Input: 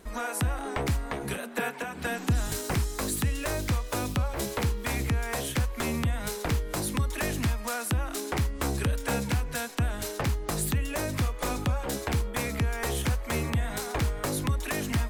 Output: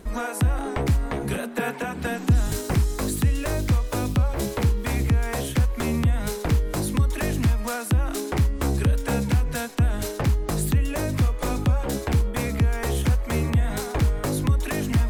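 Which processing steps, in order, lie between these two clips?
bass shelf 480 Hz +7.5 dB; reverse; upward compressor, threshold -22 dBFS; reverse

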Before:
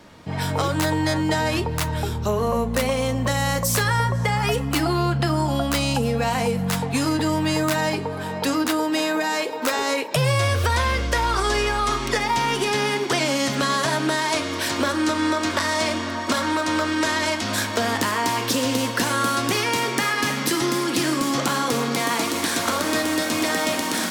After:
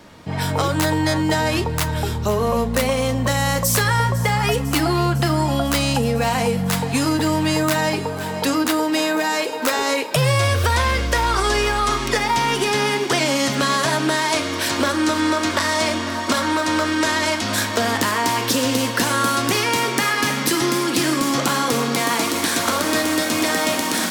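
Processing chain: treble shelf 11 kHz +3 dB; on a send: feedback echo behind a high-pass 502 ms, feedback 80%, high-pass 1.5 kHz, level -16 dB; on the sum: trim +2.5 dB

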